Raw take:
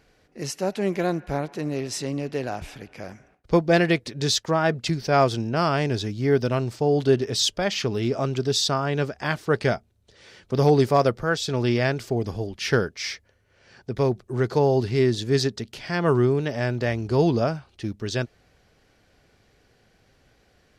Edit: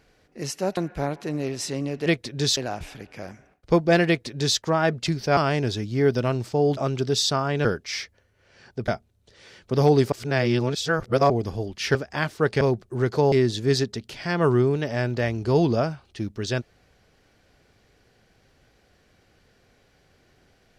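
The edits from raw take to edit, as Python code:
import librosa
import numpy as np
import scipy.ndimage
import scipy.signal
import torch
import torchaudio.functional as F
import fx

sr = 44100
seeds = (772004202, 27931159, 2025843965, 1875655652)

y = fx.edit(x, sr, fx.cut(start_s=0.77, length_s=0.32),
    fx.duplicate(start_s=3.88, length_s=0.51, to_s=2.38),
    fx.cut(start_s=5.18, length_s=0.46),
    fx.cut(start_s=7.04, length_s=1.11),
    fx.swap(start_s=9.03, length_s=0.66, other_s=12.76, other_length_s=1.23),
    fx.reverse_span(start_s=10.93, length_s=1.18),
    fx.cut(start_s=14.7, length_s=0.26), tone=tone)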